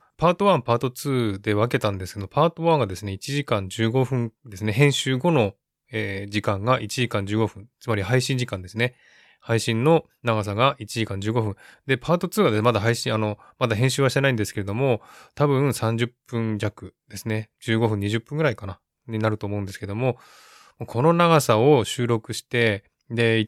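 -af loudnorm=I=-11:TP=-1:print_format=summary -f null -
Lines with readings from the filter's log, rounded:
Input Integrated:    -22.8 LUFS
Input True Peak:      -3.3 dBTP
Input LRA:             5.6 LU
Input Threshold:     -33.1 LUFS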